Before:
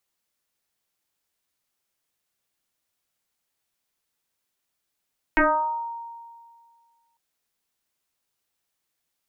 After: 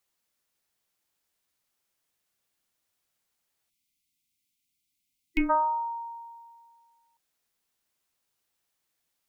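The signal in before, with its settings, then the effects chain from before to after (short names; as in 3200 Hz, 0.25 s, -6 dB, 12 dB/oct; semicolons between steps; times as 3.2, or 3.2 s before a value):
FM tone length 1.80 s, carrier 930 Hz, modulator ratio 0.34, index 4.2, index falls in 0.72 s exponential, decay 1.94 s, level -14 dB
spectral gain 3.7–5.5, 330–2000 Hz -27 dB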